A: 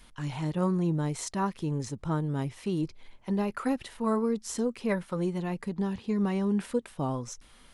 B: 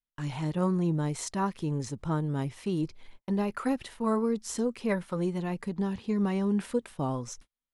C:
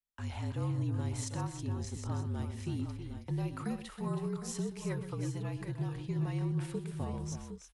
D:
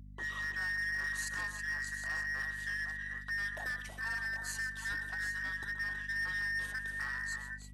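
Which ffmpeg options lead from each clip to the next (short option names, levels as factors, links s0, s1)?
-af "agate=range=0.00794:threshold=0.00447:ratio=16:detection=peak"
-filter_complex "[0:a]acrossover=split=250|3000[s0][s1][s2];[s1]acompressor=threshold=0.0141:ratio=3[s3];[s0][s3][s2]amix=inputs=3:normalize=0,afreqshift=-48,aecho=1:1:126|322|331|759|785:0.224|0.335|0.112|0.282|0.168,volume=0.562"
-filter_complex "[0:a]afftfilt=real='real(if(between(b,1,1012),(2*floor((b-1)/92)+1)*92-b,b),0)':imag='imag(if(between(b,1,1012),(2*floor((b-1)/92)+1)*92-b,b),0)*if(between(b,1,1012),-1,1)':win_size=2048:overlap=0.75,acrossover=split=160|2300[s0][s1][s2];[s1]asoftclip=type=hard:threshold=0.0126[s3];[s0][s3][s2]amix=inputs=3:normalize=0,aeval=exprs='val(0)+0.00355*(sin(2*PI*50*n/s)+sin(2*PI*2*50*n/s)/2+sin(2*PI*3*50*n/s)/3+sin(2*PI*4*50*n/s)/4+sin(2*PI*5*50*n/s)/5)':c=same"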